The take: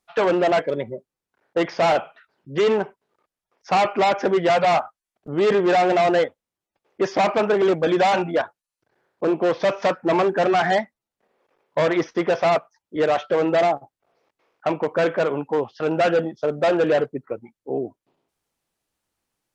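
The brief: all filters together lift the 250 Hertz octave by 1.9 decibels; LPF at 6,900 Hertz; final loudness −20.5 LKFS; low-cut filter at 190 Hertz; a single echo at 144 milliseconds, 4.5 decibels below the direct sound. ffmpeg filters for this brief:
ffmpeg -i in.wav -af "highpass=190,lowpass=6900,equalizer=frequency=250:width_type=o:gain=4.5,aecho=1:1:144:0.596,volume=-1dB" out.wav

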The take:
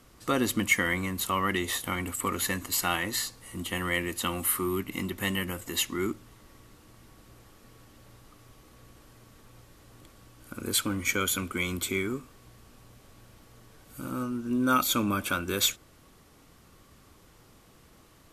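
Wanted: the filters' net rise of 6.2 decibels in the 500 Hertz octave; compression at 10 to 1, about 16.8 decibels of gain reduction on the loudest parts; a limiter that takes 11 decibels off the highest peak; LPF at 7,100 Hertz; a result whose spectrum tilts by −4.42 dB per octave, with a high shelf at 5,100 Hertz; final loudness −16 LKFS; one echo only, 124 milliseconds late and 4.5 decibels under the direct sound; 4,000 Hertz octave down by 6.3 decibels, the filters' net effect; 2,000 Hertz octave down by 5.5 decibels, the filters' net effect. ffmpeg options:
ffmpeg -i in.wav -af "lowpass=7100,equalizer=frequency=500:width_type=o:gain=8.5,equalizer=frequency=2000:width_type=o:gain=-5.5,equalizer=frequency=4000:width_type=o:gain=-4,highshelf=frequency=5100:gain=-4.5,acompressor=threshold=-36dB:ratio=10,alimiter=level_in=9.5dB:limit=-24dB:level=0:latency=1,volume=-9.5dB,aecho=1:1:124:0.596,volume=28dB" out.wav

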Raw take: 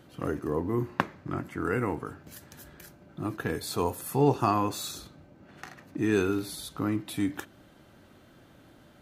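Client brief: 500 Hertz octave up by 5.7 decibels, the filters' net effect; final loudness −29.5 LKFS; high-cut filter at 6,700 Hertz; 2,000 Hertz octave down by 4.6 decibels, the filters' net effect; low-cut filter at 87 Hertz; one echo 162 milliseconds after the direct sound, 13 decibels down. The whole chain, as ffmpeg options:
ffmpeg -i in.wav -af "highpass=87,lowpass=6700,equalizer=frequency=500:width_type=o:gain=7.5,equalizer=frequency=2000:width_type=o:gain=-7,aecho=1:1:162:0.224,volume=-2.5dB" out.wav

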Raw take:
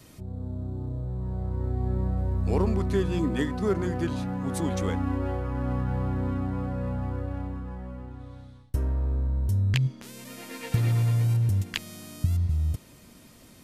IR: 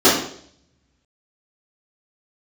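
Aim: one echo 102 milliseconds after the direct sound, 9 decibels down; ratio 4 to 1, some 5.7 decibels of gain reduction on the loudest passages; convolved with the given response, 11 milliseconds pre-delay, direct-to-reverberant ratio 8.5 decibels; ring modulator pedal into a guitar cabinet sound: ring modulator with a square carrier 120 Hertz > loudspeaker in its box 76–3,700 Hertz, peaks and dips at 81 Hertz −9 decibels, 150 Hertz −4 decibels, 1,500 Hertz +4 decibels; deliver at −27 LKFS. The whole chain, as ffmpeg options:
-filter_complex "[0:a]acompressor=threshold=-27dB:ratio=4,aecho=1:1:102:0.355,asplit=2[link_01][link_02];[1:a]atrim=start_sample=2205,adelay=11[link_03];[link_02][link_03]afir=irnorm=-1:irlink=0,volume=-34.5dB[link_04];[link_01][link_04]amix=inputs=2:normalize=0,aeval=exprs='val(0)*sgn(sin(2*PI*120*n/s))':channel_layout=same,highpass=76,equalizer=frequency=81:width_type=q:width=4:gain=-9,equalizer=frequency=150:width_type=q:width=4:gain=-4,equalizer=frequency=1500:width_type=q:width=4:gain=4,lowpass=frequency=3700:width=0.5412,lowpass=frequency=3700:width=1.3066,volume=5dB"

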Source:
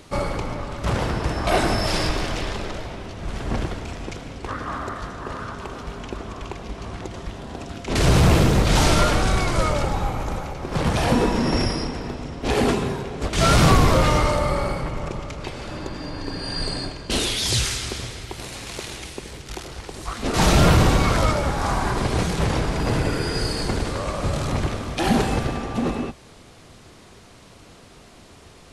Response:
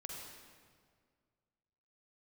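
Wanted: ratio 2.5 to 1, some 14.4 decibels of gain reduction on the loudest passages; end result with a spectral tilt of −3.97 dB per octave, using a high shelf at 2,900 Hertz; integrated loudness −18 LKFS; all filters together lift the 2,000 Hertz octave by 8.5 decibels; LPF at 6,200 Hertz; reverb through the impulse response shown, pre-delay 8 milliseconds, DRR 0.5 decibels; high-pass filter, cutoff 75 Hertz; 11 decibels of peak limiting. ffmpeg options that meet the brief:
-filter_complex "[0:a]highpass=75,lowpass=6200,equalizer=frequency=2000:width_type=o:gain=7.5,highshelf=frequency=2900:gain=8,acompressor=threshold=-33dB:ratio=2.5,alimiter=level_in=2dB:limit=-24dB:level=0:latency=1,volume=-2dB,asplit=2[link_01][link_02];[1:a]atrim=start_sample=2205,adelay=8[link_03];[link_02][link_03]afir=irnorm=-1:irlink=0,volume=2dB[link_04];[link_01][link_04]amix=inputs=2:normalize=0,volume=14dB"

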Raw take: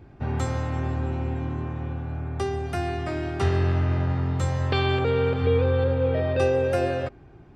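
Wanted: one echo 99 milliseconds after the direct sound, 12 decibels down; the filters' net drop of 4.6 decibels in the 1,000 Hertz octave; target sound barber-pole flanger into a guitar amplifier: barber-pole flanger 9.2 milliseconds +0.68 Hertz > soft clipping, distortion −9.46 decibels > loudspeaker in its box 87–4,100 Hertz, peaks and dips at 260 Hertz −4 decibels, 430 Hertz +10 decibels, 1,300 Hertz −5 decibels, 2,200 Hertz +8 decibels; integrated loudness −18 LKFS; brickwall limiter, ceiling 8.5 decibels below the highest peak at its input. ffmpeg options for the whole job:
ffmpeg -i in.wav -filter_complex "[0:a]equalizer=frequency=1000:width_type=o:gain=-6.5,alimiter=limit=-19.5dB:level=0:latency=1,aecho=1:1:99:0.251,asplit=2[link_01][link_02];[link_02]adelay=9.2,afreqshift=0.68[link_03];[link_01][link_03]amix=inputs=2:normalize=1,asoftclip=threshold=-33dB,highpass=87,equalizer=frequency=260:width_type=q:width=4:gain=-4,equalizer=frequency=430:width_type=q:width=4:gain=10,equalizer=frequency=1300:width_type=q:width=4:gain=-5,equalizer=frequency=2200:width_type=q:width=4:gain=8,lowpass=frequency=4100:width=0.5412,lowpass=frequency=4100:width=1.3066,volume=17.5dB" out.wav

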